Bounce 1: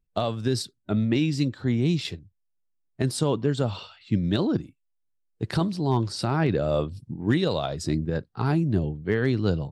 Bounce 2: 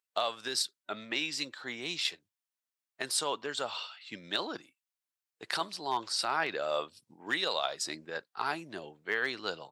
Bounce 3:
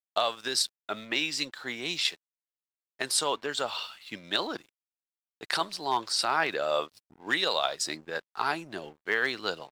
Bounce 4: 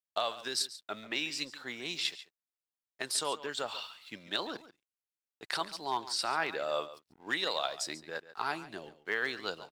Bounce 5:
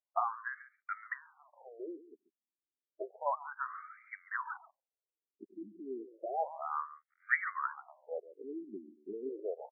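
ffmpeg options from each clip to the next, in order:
ffmpeg -i in.wav -af "highpass=960,volume=2dB" out.wav
ffmpeg -i in.wav -af "aeval=exprs='sgn(val(0))*max(abs(val(0))-0.00112,0)':channel_layout=same,volume=4.5dB" out.wav
ffmpeg -i in.wav -af "aecho=1:1:140:0.168,volume=-5.5dB" out.wav
ffmpeg -i in.wav -af "afftfilt=real='re*between(b*sr/1024,270*pow(1700/270,0.5+0.5*sin(2*PI*0.31*pts/sr))/1.41,270*pow(1700/270,0.5+0.5*sin(2*PI*0.31*pts/sr))*1.41)':imag='im*between(b*sr/1024,270*pow(1700/270,0.5+0.5*sin(2*PI*0.31*pts/sr))/1.41,270*pow(1700/270,0.5+0.5*sin(2*PI*0.31*pts/sr))*1.41)':win_size=1024:overlap=0.75,volume=4dB" out.wav

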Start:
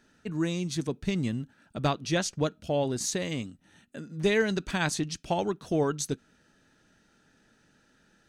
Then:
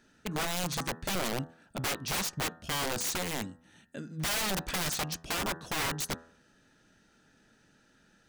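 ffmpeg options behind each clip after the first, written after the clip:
ffmpeg -i in.wav -af "aeval=exprs='(mod(20*val(0)+1,2)-1)/20':channel_layout=same,bandreject=frequency=82.41:width_type=h:width=4,bandreject=frequency=164.82:width_type=h:width=4,bandreject=frequency=247.23:width_type=h:width=4,bandreject=frequency=329.64:width_type=h:width=4,bandreject=frequency=412.05:width_type=h:width=4,bandreject=frequency=494.46:width_type=h:width=4,bandreject=frequency=576.87:width_type=h:width=4,bandreject=frequency=659.28:width_type=h:width=4,bandreject=frequency=741.69:width_type=h:width=4,bandreject=frequency=824.1:width_type=h:width=4,bandreject=frequency=906.51:width_type=h:width=4,bandreject=frequency=988.92:width_type=h:width=4,bandreject=frequency=1071.33:width_type=h:width=4,bandreject=frequency=1153.74:width_type=h:width=4,bandreject=frequency=1236.15:width_type=h:width=4,bandreject=frequency=1318.56:width_type=h:width=4,bandreject=frequency=1400.97:width_type=h:width=4,bandreject=frequency=1483.38:width_type=h:width=4,bandreject=frequency=1565.79:width_type=h:width=4,bandreject=frequency=1648.2:width_type=h:width=4,bandreject=frequency=1730.61:width_type=h:width=4,bandreject=frequency=1813.02:width_type=h:width=4,bandreject=frequency=1895.43:width_type=h:width=4" out.wav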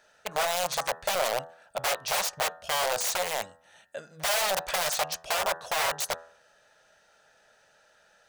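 ffmpeg -i in.wav -af "lowshelf=frequency=410:width_type=q:width=3:gain=-13,volume=3.5dB" out.wav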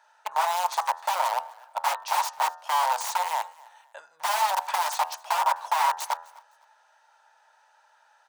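ffmpeg -i in.wav -af "highpass=frequency=920:width_type=q:width=8.9,aecho=1:1:255|510:0.0668|0.018,volume=-4.5dB" out.wav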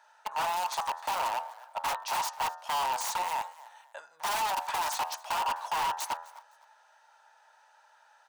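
ffmpeg -i in.wav -af "asoftclip=type=tanh:threshold=-26dB" out.wav

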